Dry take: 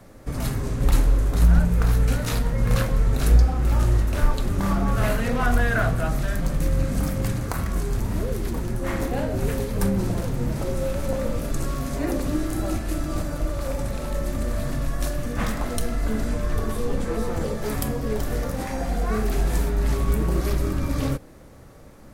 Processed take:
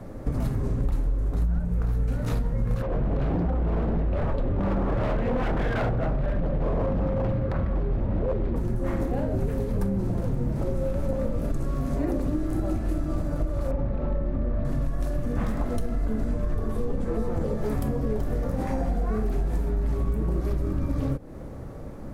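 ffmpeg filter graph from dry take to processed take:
-filter_complex "[0:a]asettb=1/sr,asplit=3[a][b][c];[a]atrim=end=2.824[d];[b]atrim=start=2.82:end=8.56,asetpts=PTS-STARTPTS,afade=t=in:d=0.004:c=qsin,afade=t=out:st=5.736:d=0.004:c=qsin,lowpass=f=3.5k:w=0.5412,lowpass=f=3.5k:w=1.3066,equalizer=f=550:w=6.9:g=11.5,aeval=exprs='0.112*(abs(mod(val(0)/0.112+3,4)-2)-1)':c=same[e];[c]atrim=start=8.556[f];[d][e]acrossfade=d=0.004:c1=hsin:c2=qsin[g];[g][f]acrossfade=d=0.004:c1=qsin:c2=hsin,asettb=1/sr,asplit=3[h][i][j];[h]atrim=end=13.714[k];[i]atrim=start=13.71:end=14.65,asetpts=PTS-STARTPTS,afade=t=in:d=0.004:c=qsin,afade=t=out:st=0.936:d=0.004:c=qsin,lowpass=3.8k,aemphasis=mode=reproduction:type=75kf[l];[j]atrim=start=14.646[m];[k][l]acrossfade=d=0.004:c1=hsin:c2=qsin[n];[n][m]acrossfade=d=0.004:c1=qsin:c2=hsin,tiltshelf=f=1.4k:g=7.5,acompressor=threshold=-25dB:ratio=6,volume=2dB"

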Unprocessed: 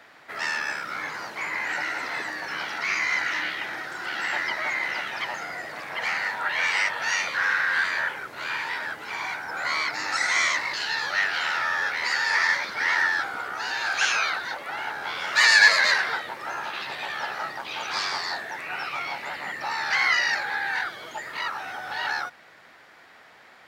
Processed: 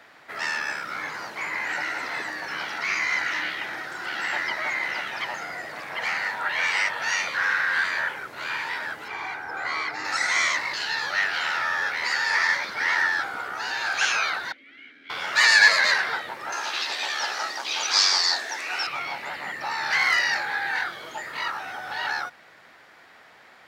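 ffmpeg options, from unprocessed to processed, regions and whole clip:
-filter_complex "[0:a]asettb=1/sr,asplit=3[a][b][c];[a]atrim=end=9.084[d];[b]atrim=start=9.08:end=10.05,asetpts=PTS-STARTPTS,afade=t=in:d=0.004:c=qsin,afade=t=out:st=0.966:d=0.004:c=qsin,highshelf=f=3.4k:g=-10,aecho=1:1:2.5:0.35,atrim=end_sample=42777[e];[c]atrim=start=10.046[f];[d][e]acrossfade=d=0.004:c1=hsin:c2=qsin[g];[g][f]acrossfade=d=0.004:c1=qsin:c2=hsin,asettb=1/sr,asplit=3[h][i][j];[h]atrim=end=14.524[k];[i]atrim=start=14.52:end=15.1,asetpts=PTS-STARTPTS,afade=t=in:d=0.004:c=qsin,afade=t=out:st=0.576:d=0.004:c=qsin,asplit=3[l][m][n];[l]bandpass=f=270:t=q:w=8,volume=0dB[o];[m]bandpass=f=2.29k:t=q:w=8,volume=-6dB[p];[n]bandpass=f=3.01k:t=q:w=8,volume=-9dB[q];[o][p][q]amix=inputs=3:normalize=0,bandreject=f=50:t=h:w=6,bandreject=f=100:t=h:w=6,bandreject=f=150:t=h:w=6,bandreject=f=200:t=h:w=6,bandreject=f=250:t=h:w=6,bandreject=f=300:t=h:w=6,bandreject=f=350:t=h:w=6,bandreject=f=400:t=h:w=6[r];[j]atrim=start=15.096[s];[k][r]acrossfade=d=0.004:c1=hsin:c2=qsin[t];[t][s]acrossfade=d=0.004:c1=qsin:c2=hsin,asettb=1/sr,asplit=3[u][v][w];[u]atrim=end=16.524[x];[v]atrim=start=16.52:end=18.87,asetpts=PTS-STARTPTS,afade=t=in:d=0.004:c=qsin,afade=t=out:st=2.346:d=0.004:c=qsin,highpass=f=240:w=0.5412,highpass=f=240:w=1.3066,equalizer=f=5.9k:t=o:w=1.4:g=15[y];[w]atrim=start=18.866[z];[x][y]acrossfade=d=0.004:c1=hsin:c2=qsin[aa];[aa][z]acrossfade=d=0.004:c1=qsin:c2=hsin,asettb=1/sr,asplit=3[ab][ac][ad];[ab]atrim=end=19.804[ae];[ac]atrim=start=19.8:end=21.59,asetpts=PTS-STARTPTS,afade=t=in:d=0.004:c=qsin,afade=t=out:st=1.786:d=0.004:c=qsin,asoftclip=type=hard:threshold=-15.5dB,asplit=2[af][ag];[ag]adelay=26,volume=-7dB[ah];[af][ah]amix=inputs=2:normalize=0,atrim=end_sample=78939[ai];[ad]atrim=start=21.586[aj];[ae][ai]acrossfade=d=0.004:c1=hsin:c2=qsin[ak];[ak][aj]acrossfade=d=0.004:c1=qsin:c2=hsin"

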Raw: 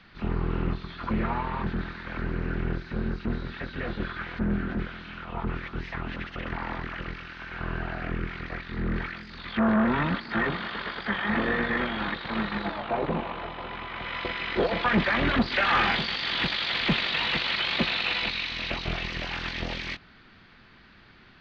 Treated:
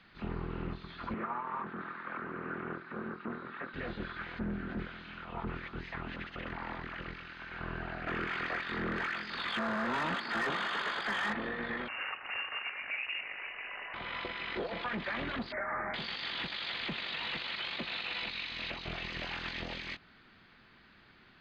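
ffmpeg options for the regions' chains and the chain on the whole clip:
-filter_complex "[0:a]asettb=1/sr,asplit=3[a][b][c];[a]atrim=end=1.144[d];[b]atrim=start=1.14:end=3.74,asetpts=PTS-STARTPTS,afade=t=in:d=0.004:c=qsin,afade=t=out:st=2.596:d=0.004:c=qsin,highpass=220,lowpass=2.2k,equalizer=f=1.2k:t=o:w=0.55:g=9.5[e];[c]atrim=start=3.736[f];[d][e]acrossfade=d=0.004:c1=hsin:c2=qsin[g];[g][f]acrossfade=d=0.004:c1=qsin:c2=hsin,asettb=1/sr,asplit=3[h][i][j];[h]atrim=end=8.074[k];[i]atrim=start=8.07:end=11.33,asetpts=PTS-STARTPTS,afade=t=in:d=0.004:c=qsin,afade=t=out:st=3.256:d=0.004:c=qsin,equalizer=f=2.2k:t=o:w=0.48:g=-3,bandreject=f=4k:w=17,asplit=2[l][m];[m]highpass=f=720:p=1,volume=20dB,asoftclip=type=tanh:threshold=-13.5dB[n];[l][n]amix=inputs=2:normalize=0,lowpass=f=4k:p=1,volume=-6dB[o];[j]atrim=start=11.326[p];[k][o]acrossfade=d=0.004:c1=hsin:c2=qsin[q];[q][p]acrossfade=d=0.004:c1=qsin:c2=hsin,asettb=1/sr,asplit=3[r][s][t];[r]atrim=end=11.884[u];[s]atrim=start=11.88:end=13.94,asetpts=PTS-STARTPTS,afade=t=in:d=0.004:c=qsin,afade=t=out:st=2.056:d=0.004:c=qsin,highpass=75,lowpass=f=2.6k:t=q:w=0.5098,lowpass=f=2.6k:t=q:w=0.6013,lowpass=f=2.6k:t=q:w=0.9,lowpass=f=2.6k:t=q:w=2.563,afreqshift=-3000[v];[t]atrim=start=13.936[w];[u][v]acrossfade=d=0.004:c1=hsin:c2=qsin[x];[x][w]acrossfade=d=0.004:c1=qsin:c2=hsin,asettb=1/sr,asplit=3[y][z][aa];[y]atrim=end=15.524[ab];[z]atrim=start=15.52:end=15.94,asetpts=PTS-STARTPTS,afade=t=in:d=0.004:c=qsin,afade=t=out:st=0.416:d=0.004:c=qsin,aeval=exprs='val(0)+0.0355*sin(2*PI*620*n/s)':c=same,asuperstop=centerf=4300:order=20:qfactor=0.73[ac];[aa]atrim=start=15.936[ad];[ab][ac]acrossfade=d=0.004:c1=hsin:c2=qsin[ae];[ae][ad]acrossfade=d=0.004:c1=qsin:c2=hsin,lowshelf=f=110:g=-6.5,bandreject=f=5.6k:w=7.3,alimiter=limit=-22dB:level=0:latency=1:release=296,volume=-5.5dB"

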